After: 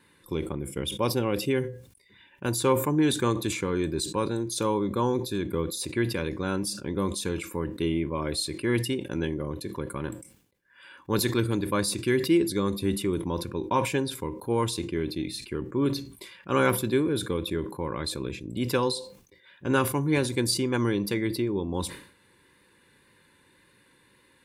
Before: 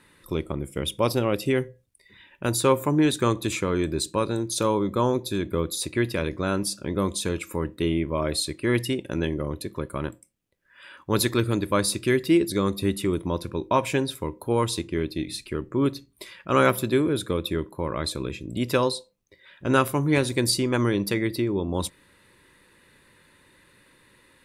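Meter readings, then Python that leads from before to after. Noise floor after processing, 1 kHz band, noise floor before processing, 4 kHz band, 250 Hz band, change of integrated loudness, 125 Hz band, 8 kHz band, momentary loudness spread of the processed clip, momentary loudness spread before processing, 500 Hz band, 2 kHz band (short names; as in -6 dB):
-62 dBFS, -3.0 dB, -60 dBFS, -2.0 dB, -2.0 dB, -2.5 dB, -2.5 dB, -2.5 dB, 10 LU, 10 LU, -3.0 dB, -3.0 dB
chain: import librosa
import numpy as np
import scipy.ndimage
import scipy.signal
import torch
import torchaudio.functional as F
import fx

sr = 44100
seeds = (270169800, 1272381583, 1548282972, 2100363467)

y = fx.notch_comb(x, sr, f0_hz=640.0)
y = fx.wow_flutter(y, sr, seeds[0], rate_hz=2.1, depth_cents=20.0)
y = fx.sustainer(y, sr, db_per_s=100.0)
y = y * 10.0 ** (-2.5 / 20.0)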